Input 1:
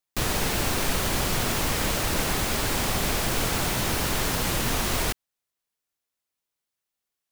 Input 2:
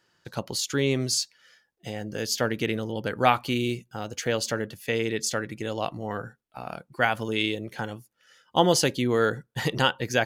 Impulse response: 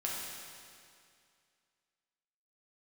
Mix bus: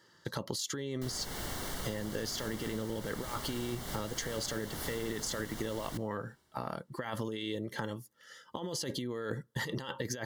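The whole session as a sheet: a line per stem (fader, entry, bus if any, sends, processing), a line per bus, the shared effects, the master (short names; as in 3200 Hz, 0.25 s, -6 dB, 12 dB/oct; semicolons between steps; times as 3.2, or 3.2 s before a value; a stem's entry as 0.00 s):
-12.5 dB, 0.85 s, send -20.5 dB, dry
+1.5 dB, 0.00 s, no send, negative-ratio compressor -31 dBFS, ratio -1; notch comb 740 Hz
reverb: on, RT60 2.3 s, pre-delay 5 ms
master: Butterworth band-stop 2500 Hz, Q 4.9; compressor, threshold -33 dBFS, peak gain reduction 11 dB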